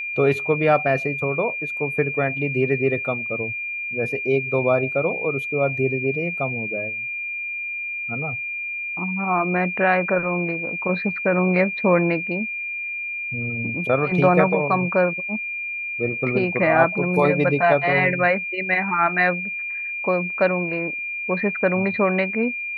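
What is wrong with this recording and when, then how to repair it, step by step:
whine 2.4 kHz -26 dBFS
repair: band-stop 2.4 kHz, Q 30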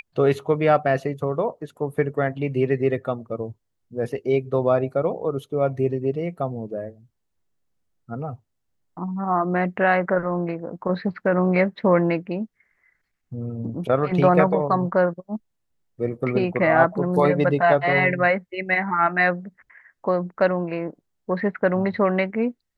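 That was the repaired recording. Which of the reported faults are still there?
nothing left

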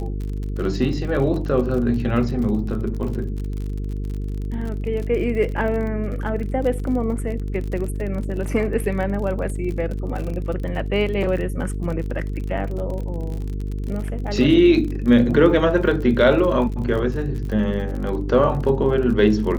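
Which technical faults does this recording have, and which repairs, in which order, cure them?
buzz 50 Hz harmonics 9 -26 dBFS
crackle 44 per s -29 dBFS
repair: de-click; de-hum 50 Hz, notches 9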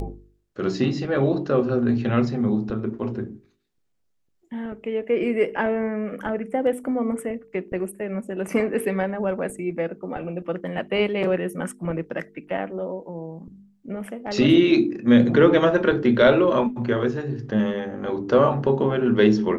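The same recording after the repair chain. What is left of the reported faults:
nothing left

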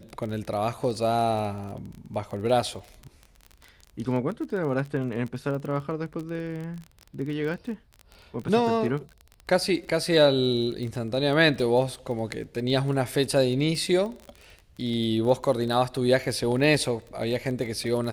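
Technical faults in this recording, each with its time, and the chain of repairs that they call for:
crackle 21 per s -32 dBFS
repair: de-click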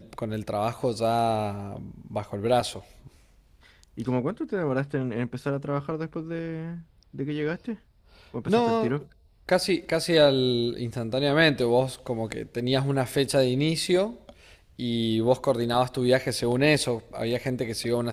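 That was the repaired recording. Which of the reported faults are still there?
nothing left

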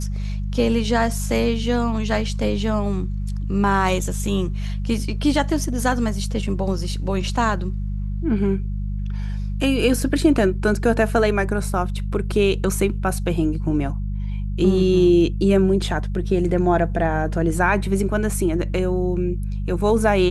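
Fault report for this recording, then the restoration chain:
hum 50 Hz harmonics 4 -25 dBFS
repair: de-hum 50 Hz, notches 4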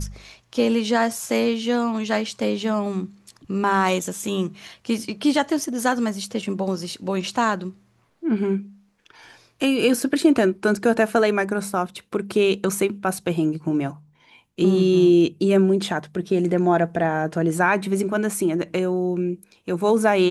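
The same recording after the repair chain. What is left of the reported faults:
nothing left

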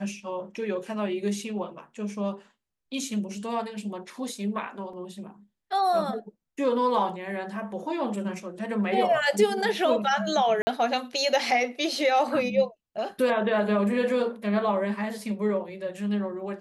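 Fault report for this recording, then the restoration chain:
4.93 s: dropout 3.8 ms
10.62–10.67 s: dropout 50 ms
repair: interpolate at 4.93 s, 3.8 ms; interpolate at 10.62 s, 50 ms

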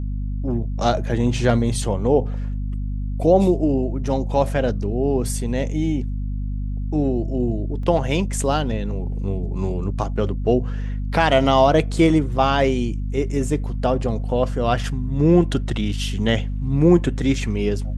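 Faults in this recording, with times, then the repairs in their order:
hum 50 Hz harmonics 5 -25 dBFS
7.83 s: dropout 3.3 ms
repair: de-hum 50 Hz, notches 5; interpolate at 7.83 s, 3.3 ms

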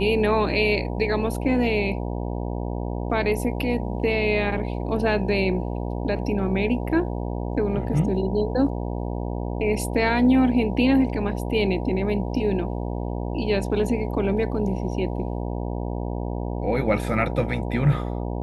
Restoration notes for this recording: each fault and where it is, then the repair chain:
buzz 60 Hz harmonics 16 -28 dBFS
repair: de-hum 60 Hz, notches 16

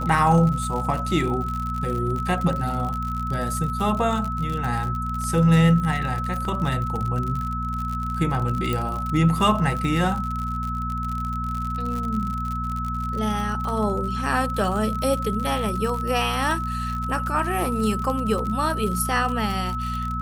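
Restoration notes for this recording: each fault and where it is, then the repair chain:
crackle 59 per s -27 dBFS
hum 60 Hz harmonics 4 -29 dBFS
whine 1.3 kHz -28 dBFS
6.45 s: dropout 2.4 ms
8.73 s: pop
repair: de-click; de-hum 60 Hz, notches 4; band-stop 1.3 kHz, Q 30; interpolate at 6.45 s, 2.4 ms

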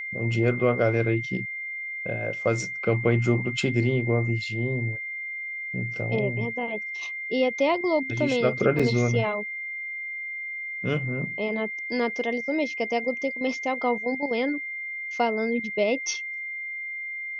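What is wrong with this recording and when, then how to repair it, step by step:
whine 2.1 kHz -31 dBFS
8.79–8.80 s: dropout 5.6 ms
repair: band-stop 2.1 kHz, Q 30; interpolate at 8.79 s, 5.6 ms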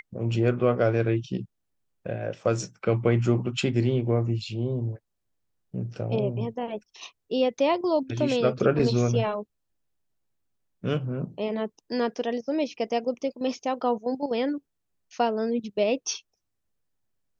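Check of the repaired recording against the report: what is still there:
nothing left

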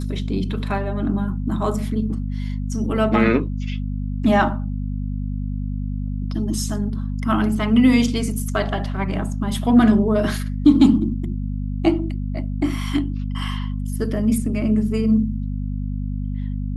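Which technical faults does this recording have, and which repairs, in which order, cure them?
hum 50 Hz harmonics 5 -25 dBFS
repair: de-hum 50 Hz, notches 5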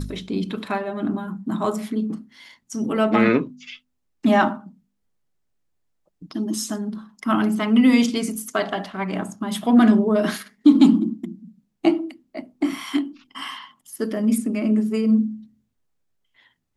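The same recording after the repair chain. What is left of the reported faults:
nothing left

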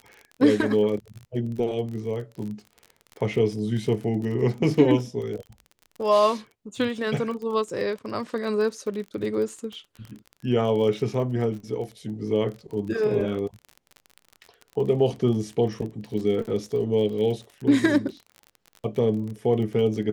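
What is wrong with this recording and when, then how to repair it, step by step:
crackle 36 per s -33 dBFS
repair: de-click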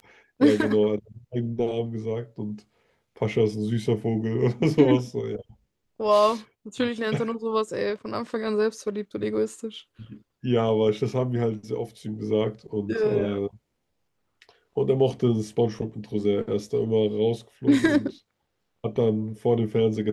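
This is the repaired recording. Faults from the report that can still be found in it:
nothing left

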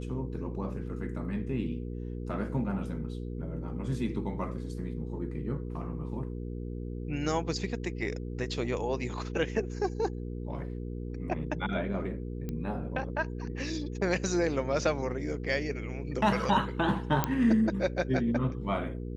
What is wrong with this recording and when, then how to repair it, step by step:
hum 60 Hz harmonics 8 -37 dBFS
12.49 s: pop -23 dBFS
17.24 s: pop -11 dBFS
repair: de-click; de-hum 60 Hz, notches 8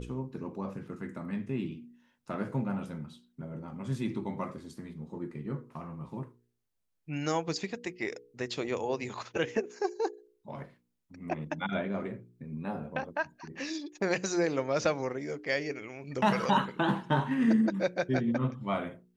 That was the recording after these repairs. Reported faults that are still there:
nothing left

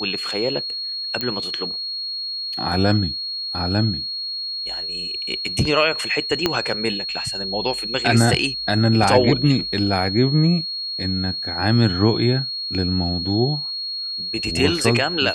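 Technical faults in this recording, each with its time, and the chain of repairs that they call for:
whine 4.3 kHz -25 dBFS
1.21 s: pop -9 dBFS
6.46 s: pop -3 dBFS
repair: de-click; band-stop 4.3 kHz, Q 30

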